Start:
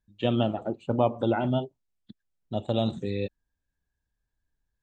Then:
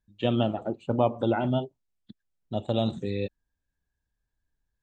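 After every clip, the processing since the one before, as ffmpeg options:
-af anull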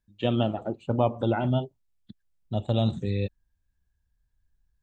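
-af "asubboost=boost=3:cutoff=180"

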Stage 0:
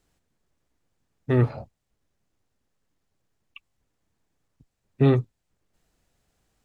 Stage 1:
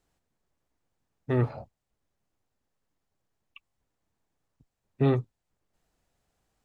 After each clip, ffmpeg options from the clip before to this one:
-af "equalizer=f=830:w=1:g=4,volume=0.531"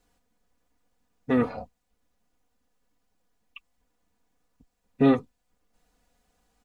-af "aecho=1:1:4.1:0.82,volume=1.5"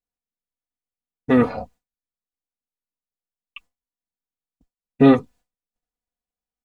-af "agate=range=0.0224:threshold=0.00355:ratio=3:detection=peak,volume=2.24"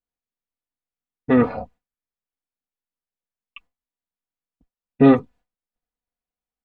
-af "bass=f=250:g=0,treble=f=4000:g=-13"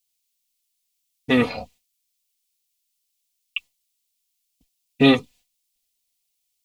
-af "aexciter=amount=12.4:drive=3.6:freq=2300,volume=0.708"

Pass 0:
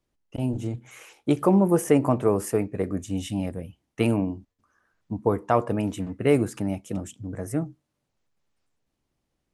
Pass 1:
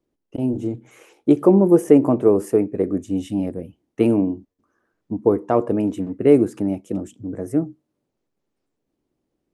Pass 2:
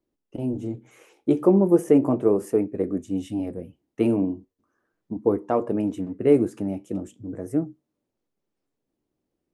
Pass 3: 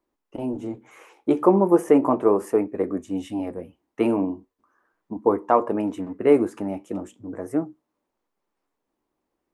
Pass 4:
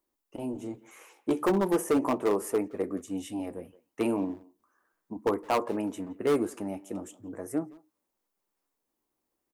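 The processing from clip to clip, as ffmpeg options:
-af "equalizer=f=340:t=o:w=1.9:g=14,volume=0.562"
-af "flanger=delay=3:depth=9.2:regen=-70:speed=0.37:shape=triangular"
-af "equalizer=f=125:t=o:w=1:g=-8,equalizer=f=1000:t=o:w=1:g=11,equalizer=f=2000:t=o:w=1:g=4"
-filter_complex "[0:a]asoftclip=type=hard:threshold=0.224,asplit=2[s0][s1];[s1]adelay=170,highpass=300,lowpass=3400,asoftclip=type=hard:threshold=0.075,volume=0.112[s2];[s0][s2]amix=inputs=2:normalize=0,crystalizer=i=2.5:c=0,volume=0.473"

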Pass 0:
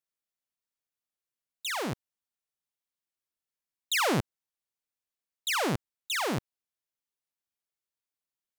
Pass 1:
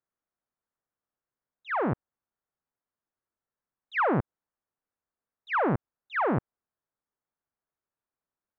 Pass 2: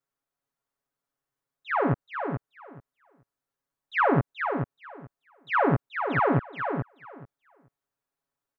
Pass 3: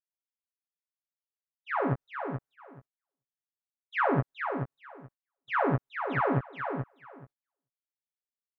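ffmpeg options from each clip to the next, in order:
-af "lowpass=f=1600:w=0.5412,lowpass=f=1600:w=1.3066,acompressor=threshold=0.0355:ratio=6,volume=2.24"
-filter_complex "[0:a]aecho=1:1:7.2:0.95,asplit=2[s0][s1];[s1]aecho=0:1:430|860|1290:0.473|0.0757|0.0121[s2];[s0][s2]amix=inputs=2:normalize=0"
-filter_complex "[0:a]agate=range=0.0447:threshold=0.00251:ratio=16:detection=peak,asplit=2[s0][s1];[s1]adelay=15,volume=0.447[s2];[s0][s2]amix=inputs=2:normalize=0,volume=0.562"

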